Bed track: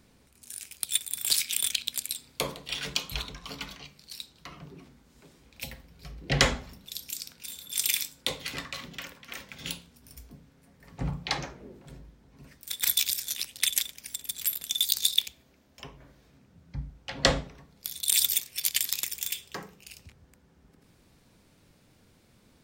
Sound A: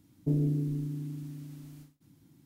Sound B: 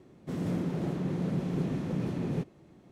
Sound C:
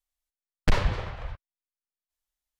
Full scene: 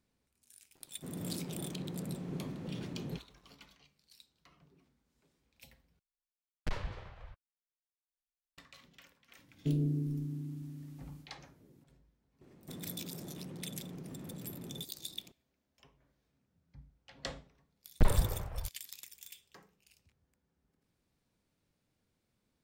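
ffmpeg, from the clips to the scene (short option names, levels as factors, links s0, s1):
-filter_complex "[2:a]asplit=2[s0][s1];[3:a]asplit=2[s2][s3];[0:a]volume=0.112[s4];[s0]aeval=exprs='val(0)*gte(abs(val(0)),0.00224)':c=same[s5];[1:a]lowshelf=f=490:g=4[s6];[s1]acompressor=threshold=0.0112:ratio=6:attack=3.2:release=140:knee=1:detection=peak[s7];[s3]tiltshelf=f=1400:g=7.5[s8];[s4]asplit=2[s9][s10];[s9]atrim=end=5.994[s11];[s2]atrim=end=2.59,asetpts=PTS-STARTPTS,volume=0.188[s12];[s10]atrim=start=8.576[s13];[s5]atrim=end=2.91,asetpts=PTS-STARTPTS,volume=0.335,afade=t=in:d=0.004:c=hsin,afade=t=out:st=2.906:d=0.004:c=hsin,adelay=750[s14];[s6]atrim=end=2.45,asetpts=PTS-STARTPTS,volume=0.447,afade=t=in:d=0.004:c=hsin,afade=t=out:st=2.446:d=0.004:c=hsin,adelay=9390[s15];[s7]atrim=end=2.91,asetpts=PTS-STARTPTS,volume=0.631,afade=t=in:d=0.004:c=hsin,afade=t=out:st=2.906:d=0.004:c=hsin,adelay=12410[s16];[s8]atrim=end=2.59,asetpts=PTS-STARTPTS,volume=0.299,afade=t=in:d=0.004:c=hsin,afade=t=out:st=2.586:d=0.004:c=hsin,adelay=17330[s17];[s11][s12]acrossfade=d=0.004:c1=hsin:c2=hsin[s18];[s18][s13]acrossfade=d=0.004:c1=hsin:c2=hsin[s19];[s19][s14][s15][s16][s17]amix=inputs=5:normalize=0"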